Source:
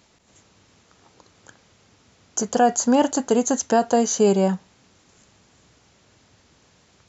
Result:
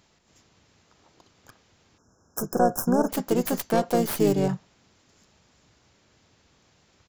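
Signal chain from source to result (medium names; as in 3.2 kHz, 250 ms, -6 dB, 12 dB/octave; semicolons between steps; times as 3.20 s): tracing distortion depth 0.47 ms; harmony voices -7 st -16 dB, -5 st -4 dB; spectral selection erased 1.98–3.09 s, 1.7–5.1 kHz; trim -6 dB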